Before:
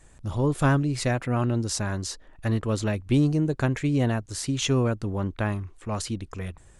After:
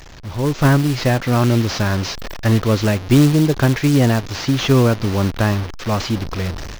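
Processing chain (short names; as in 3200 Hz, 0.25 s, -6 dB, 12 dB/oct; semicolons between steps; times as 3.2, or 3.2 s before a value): delta modulation 32 kbps, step -32.5 dBFS; AGC gain up to 11 dB; short-mantissa float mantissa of 2-bit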